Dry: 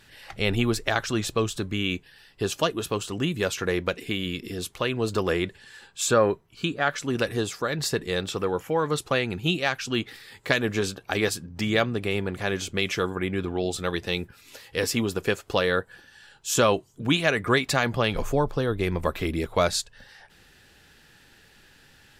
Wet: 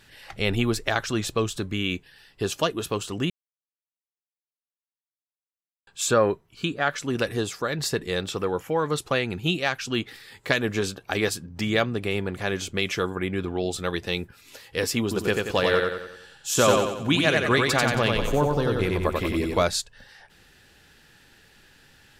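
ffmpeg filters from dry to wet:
-filter_complex "[0:a]asettb=1/sr,asplit=3[a][b][c];[a]atrim=end=15.024[d];[b]atrim=start=15.02:end=19.63,asetpts=PTS-STARTPTS,afade=t=in:d=0.004:c=qsin,afade=t=out:st=4.606:d=0.004:c=qsin,aecho=1:1:91|182|273|364|455|546:0.708|0.333|0.156|0.0735|0.0345|0.0162,atrim=end_sample=203301[e];[c]atrim=start=19.626[f];[d][e]acrossfade=d=0.004:c1=hsin:c2=qsin[g];[g][f]acrossfade=d=0.004:c1=qsin:c2=hsin,asplit=3[h][i][j];[h]atrim=end=3.3,asetpts=PTS-STARTPTS,afade=t=out:st=3.296:d=0.004:c=hsin[k];[i]atrim=start=3.3:end=5.87,asetpts=PTS-STARTPTS,volume=0[l];[j]atrim=start=5.87,asetpts=PTS-STARTPTS,afade=t=in:d=0.004:c=hsin[m];[k][l][m]concat=n=3:v=0:a=1"

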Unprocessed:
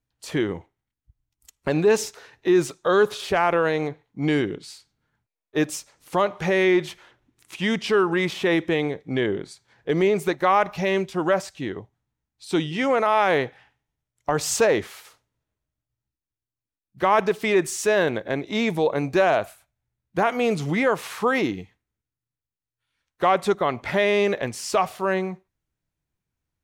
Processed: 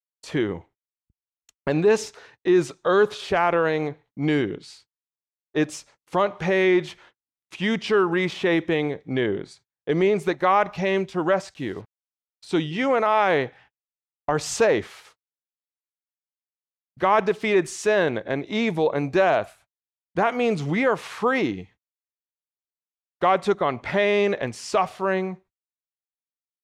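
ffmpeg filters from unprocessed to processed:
-filter_complex "[0:a]asettb=1/sr,asplit=3[a][b][c];[a]atrim=end=11.544[d];[b]atrim=start=11.54:end=12.51,asetpts=PTS-STARTPTS,afade=t=in:d=0.004:c=qsin,afade=t=out:st=0.966:d=0.004:c=qsin,acrusher=bits=7:mix=0:aa=0.5[e];[c]atrim=start=12.506[f];[d][e]acrossfade=d=0.004:c1=hsin:c2=qsin[g];[g][f]acrossfade=d=0.004:c1=qsin:c2=hsin,lowpass=12k,agate=range=-42dB:threshold=-50dB:ratio=16:detection=peak,highshelf=f=8.5k:g=-11.5"

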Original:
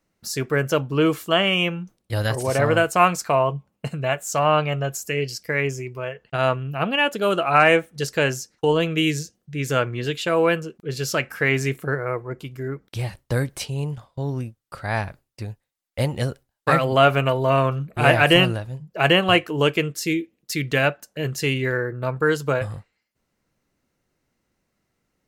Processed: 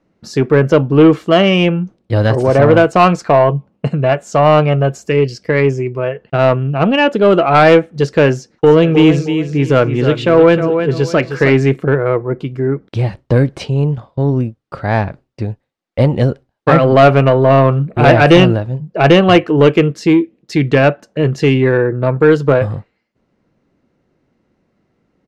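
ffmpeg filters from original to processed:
-filter_complex "[0:a]asplit=3[a][b][c];[a]afade=t=out:st=8.65:d=0.02[d];[b]aecho=1:1:311|622|933:0.355|0.0958|0.0259,afade=t=in:st=8.65:d=0.02,afade=t=out:st=11.6:d=0.02[e];[c]afade=t=in:st=11.6:d=0.02[f];[d][e][f]amix=inputs=3:normalize=0,lowpass=4.4k,equalizer=f=280:w=0.33:g=11,acontrast=25,volume=-1dB"

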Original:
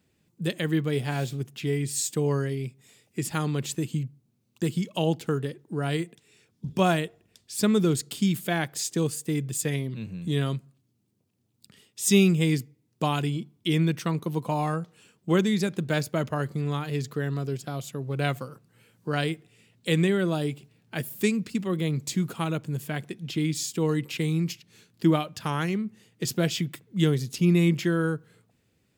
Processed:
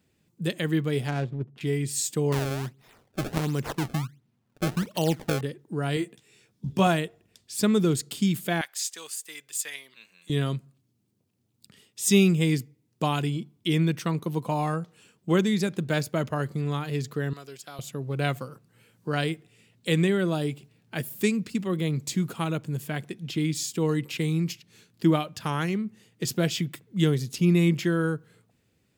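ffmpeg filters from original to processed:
-filter_complex "[0:a]asettb=1/sr,asplit=3[a][b][c];[a]atrim=end=1.084[d];[b]atrim=start=1.08:end=1.61,asetpts=PTS-STARTPTS,afade=t=in:d=0.004:c=qsin,afade=t=out:st=0.526:d=0.004:c=qsin,adynamicsmooth=sensitivity=4.5:basefreq=600[e];[c]atrim=start=1.606[f];[d][e]acrossfade=d=0.004:c1=hsin:c2=qsin[g];[g][f]acrossfade=d=0.004:c1=qsin:c2=hsin,asettb=1/sr,asplit=3[h][i][j];[h]atrim=end=2.324[k];[i]atrim=start=2.32:end=5.41,asetpts=PTS-STARTPTS,afade=t=in:d=0.004:c=qsin,afade=t=out:st=3.086:d=0.004:c=qsin,acrusher=samples=26:mix=1:aa=0.000001:lfo=1:lforange=41.6:lforate=1.4[l];[j]atrim=start=5.406[m];[k][l]acrossfade=d=0.004:c1=hsin:c2=qsin[n];[n][m]acrossfade=d=0.004:c1=qsin:c2=hsin,asettb=1/sr,asplit=3[o][p][q];[o]atrim=end=5.954[r];[p]atrim=start=5.95:end=6.87,asetpts=PTS-STARTPTS,afade=t=in:d=0.004:c=qsin,afade=t=out:st=0.916:d=0.004:c=qsin,asplit=2[s][t];[t]adelay=15,volume=-5.5dB[u];[s][u]amix=inputs=2:normalize=0,atrim=end_sample=40572[v];[q]atrim=start=6.866[w];[r][v]acrossfade=d=0.004:c1=hsin:c2=qsin[x];[x][w]acrossfade=d=0.004:c1=qsin:c2=hsin,asettb=1/sr,asplit=3[y][z][aa];[y]atrim=end=8.614[ab];[z]atrim=start=8.61:end=10.3,asetpts=PTS-STARTPTS,afade=t=in:d=0.004:c=qsin,afade=t=out:st=1.686:d=0.004:c=qsin,highpass=1.3k[ac];[aa]atrim=start=10.296[ad];[ab][ac]acrossfade=d=0.004:c1=hsin:c2=qsin[ae];[ae][ad]acrossfade=d=0.004:c1=qsin:c2=hsin,asettb=1/sr,asplit=3[af][ag][ah];[af]atrim=end=17.334[ai];[ag]atrim=start=17.33:end=17.79,asetpts=PTS-STARTPTS,afade=t=in:d=0.004:c=qsin,afade=t=out:st=0.456:d=0.004:c=qsin,highpass=f=1.4k:p=1[aj];[ah]atrim=start=17.786[ak];[ai][aj]acrossfade=d=0.004:c1=hsin:c2=qsin[al];[al][ak]acrossfade=d=0.004:c1=qsin:c2=hsin"

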